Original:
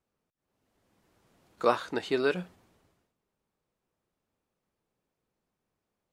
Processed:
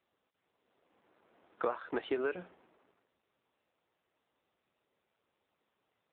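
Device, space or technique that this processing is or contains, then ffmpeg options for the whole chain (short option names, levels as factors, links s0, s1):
voicemail: -af "highpass=330,lowpass=2700,acompressor=threshold=0.0224:ratio=12,volume=1.58" -ar 8000 -c:a libopencore_amrnb -b:a 7400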